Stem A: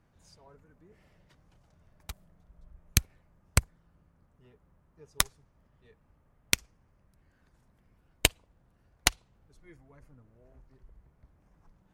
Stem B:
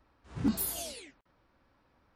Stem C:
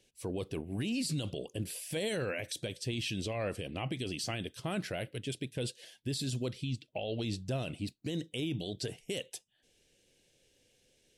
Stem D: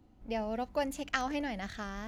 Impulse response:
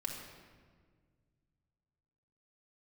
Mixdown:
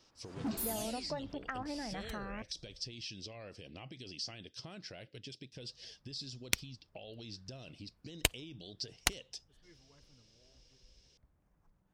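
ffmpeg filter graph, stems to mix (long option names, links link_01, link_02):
-filter_complex "[0:a]dynaudnorm=framelen=340:gausssize=17:maxgain=11.5dB,volume=-9.5dB,asplit=3[link_01][link_02][link_03];[link_01]atrim=end=2.9,asetpts=PTS-STARTPTS,afade=type=out:start_time=2.896:duration=0.004:curve=hsin[link_04];[link_02]atrim=start=2.9:end=5.52,asetpts=PTS-STARTPTS,volume=0[link_05];[link_03]atrim=start=5.52,asetpts=PTS-STARTPTS,afade=type=in:duration=0.004:curve=hsin[link_06];[link_04][link_05][link_06]concat=n=3:v=0:a=1[link_07];[1:a]highpass=140,volume=29dB,asoftclip=hard,volume=-29dB,volume=-3.5dB[link_08];[2:a]acompressor=threshold=-43dB:ratio=6,lowpass=frequency=5200:width_type=q:width=6.3,volume=-4dB[link_09];[3:a]lowpass=frequency=1900:width=0.5412,lowpass=frequency=1900:width=1.3066,acompressor=threshold=-38dB:ratio=3,adelay=350,volume=-1dB[link_10];[link_07][link_08][link_09][link_10]amix=inputs=4:normalize=0"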